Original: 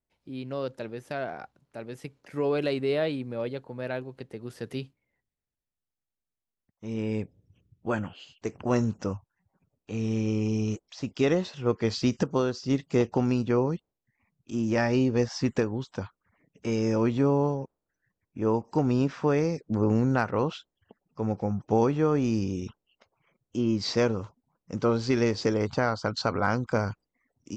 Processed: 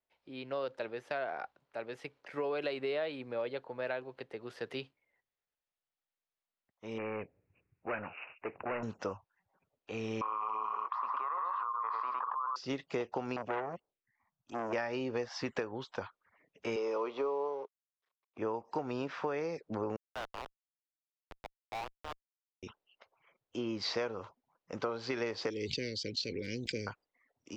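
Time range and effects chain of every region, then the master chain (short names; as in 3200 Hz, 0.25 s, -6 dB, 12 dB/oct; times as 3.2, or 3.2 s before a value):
6.98–8.83 bell 2500 Hz +4 dB 0.27 oct + hard clip -29.5 dBFS + careless resampling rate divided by 8×, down none, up filtered
10.21–12.56 Butterworth band-pass 1100 Hz, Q 5.8 + echo 0.11 s -7 dB + fast leveller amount 100%
13.36–14.73 envelope phaser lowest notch 380 Hz, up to 3700 Hz, full sweep at -28 dBFS + core saturation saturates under 1100 Hz
16.76–18.38 G.711 law mismatch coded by A + speaker cabinet 370–6200 Hz, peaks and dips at 420 Hz +9 dB, 1100 Hz +9 dB, 1700 Hz -10 dB
19.96–22.63 elliptic high-pass 670 Hz, stop band 50 dB + Schmitt trigger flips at -29 dBFS
25.5–26.87 inverse Chebyshev band-stop 690–1400 Hz, stop band 50 dB + high shelf 5600 Hz +7.5 dB + sustainer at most 36 dB/s
whole clip: three-band isolator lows -16 dB, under 420 Hz, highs -17 dB, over 4600 Hz; compressor 6:1, threshold -34 dBFS; gain +2 dB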